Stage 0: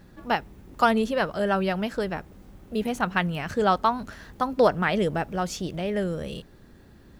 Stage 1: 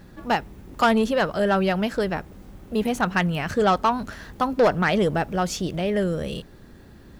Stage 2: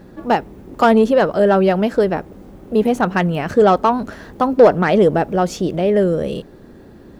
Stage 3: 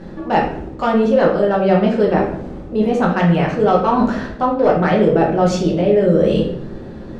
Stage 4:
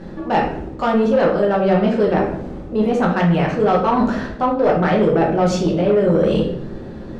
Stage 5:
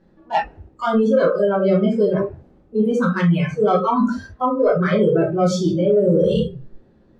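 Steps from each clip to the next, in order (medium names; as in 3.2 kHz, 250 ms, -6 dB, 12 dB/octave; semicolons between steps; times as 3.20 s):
saturation -16 dBFS, distortion -14 dB; trim +4.5 dB
peaking EQ 410 Hz +11 dB 2.7 oct; trim -1 dB
low-pass 5.8 kHz 12 dB/octave; reverse; compression 6:1, threshold -21 dBFS, peak gain reduction 15 dB; reverse; simulated room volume 120 m³, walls mixed, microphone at 1.1 m; trim +4 dB
saturation -7.5 dBFS, distortion -19 dB
spectral noise reduction 22 dB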